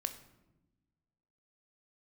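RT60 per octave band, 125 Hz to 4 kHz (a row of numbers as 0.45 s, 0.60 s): 1.7 s, 1.6 s, 1.2 s, 0.90 s, 0.75 s, 0.60 s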